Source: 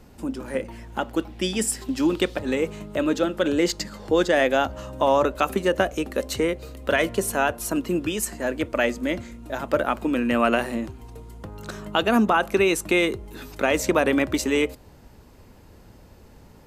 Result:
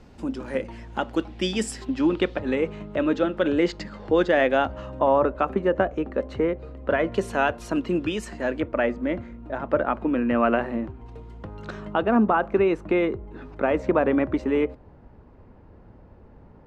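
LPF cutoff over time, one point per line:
5400 Hz
from 1.85 s 2800 Hz
from 4.99 s 1500 Hz
from 7.12 s 3700 Hz
from 8.6 s 1700 Hz
from 11.06 s 3100 Hz
from 11.93 s 1400 Hz

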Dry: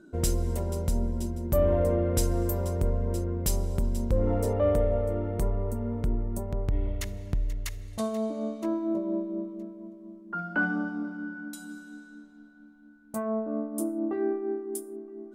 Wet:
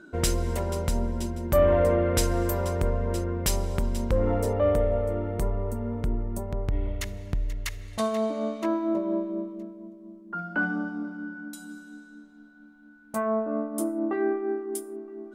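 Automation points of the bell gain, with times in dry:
bell 1900 Hz 2.9 oct
4.09 s +11 dB
4.49 s +4 dB
7.4 s +4 dB
8.18 s +11 dB
9.25 s +11 dB
9.9 s 0 dB
12.13 s 0 dB
13.26 s +10 dB

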